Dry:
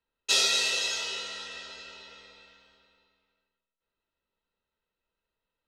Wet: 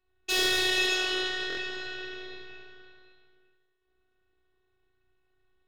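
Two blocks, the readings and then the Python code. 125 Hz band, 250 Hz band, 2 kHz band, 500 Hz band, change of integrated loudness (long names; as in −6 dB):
can't be measured, +15.5 dB, +4.0 dB, +7.5 dB, −1.0 dB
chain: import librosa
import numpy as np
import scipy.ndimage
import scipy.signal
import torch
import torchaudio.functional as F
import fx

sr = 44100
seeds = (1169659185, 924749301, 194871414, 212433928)

y = fx.lowpass(x, sr, hz=2900.0, slope=6)
y = 10.0 ** (-30.5 / 20.0) * np.tanh(y / 10.0 ** (-30.5 / 20.0))
y = fx.highpass(y, sr, hz=40.0, slope=6)
y = fx.rev_spring(y, sr, rt60_s=1.2, pass_ms=(33,), chirp_ms=35, drr_db=-2.5)
y = fx.robotise(y, sr, hz=371.0)
y = fx.low_shelf(y, sr, hz=240.0, db=11.5)
y = y + 10.0 ** (-9.0 / 20.0) * np.pad(y, (int(75 * sr / 1000.0), 0))[:len(y)]
y = fx.buffer_glitch(y, sr, at_s=(1.48,), block=1024, repeats=3)
y = y * 10.0 ** (7.5 / 20.0)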